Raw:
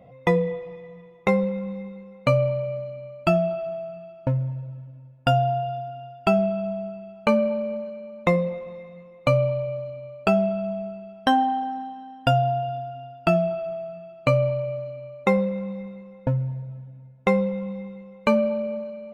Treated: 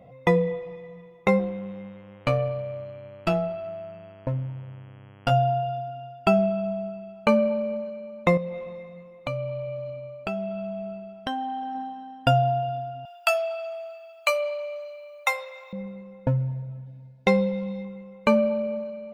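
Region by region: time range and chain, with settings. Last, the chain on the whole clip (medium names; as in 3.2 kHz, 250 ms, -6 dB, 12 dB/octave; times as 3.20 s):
1.38–5.30 s: valve stage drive 12 dB, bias 0.75 + mains buzz 100 Hz, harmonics 33, -51 dBFS -5 dB/octave
8.37–11.75 s: compression 3:1, threshold -30 dBFS + dynamic bell 3 kHz, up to +4 dB, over -51 dBFS, Q 1.3
13.05–15.73 s: Chebyshev high-pass 580 Hz, order 5 + tilt EQ +4.5 dB/octave
16.86–17.85 s: Butterworth band-stop 1.2 kHz, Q 3.9 + peaking EQ 4.5 kHz +12 dB 0.75 oct
whole clip: none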